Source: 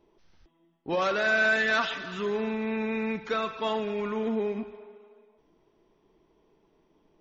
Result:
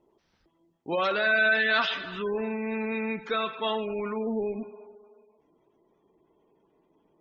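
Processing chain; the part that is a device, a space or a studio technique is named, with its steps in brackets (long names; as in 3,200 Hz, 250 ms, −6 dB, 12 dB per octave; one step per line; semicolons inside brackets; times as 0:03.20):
dynamic equaliser 3,500 Hz, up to +5 dB, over −41 dBFS, Q 0.9
noise-suppressed video call (high-pass filter 130 Hz 6 dB per octave; gate on every frequency bin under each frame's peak −25 dB strong; Opus 20 kbit/s 48,000 Hz)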